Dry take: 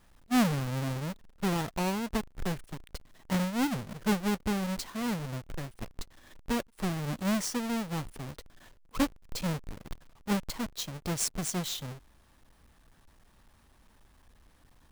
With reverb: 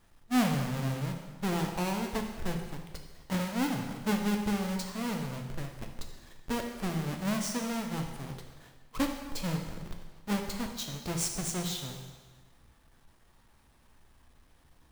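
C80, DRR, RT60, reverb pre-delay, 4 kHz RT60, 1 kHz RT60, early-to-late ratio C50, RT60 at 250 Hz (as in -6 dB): 7.0 dB, 2.5 dB, 1.4 s, 5 ms, 1.3 s, 1.4 s, 5.5 dB, 1.4 s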